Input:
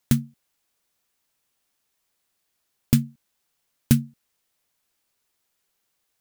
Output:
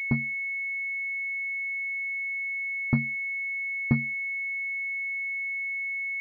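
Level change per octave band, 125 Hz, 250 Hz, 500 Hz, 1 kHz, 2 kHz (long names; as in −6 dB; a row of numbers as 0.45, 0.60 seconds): −6.0, −5.5, −3.0, +2.0, +23.0 decibels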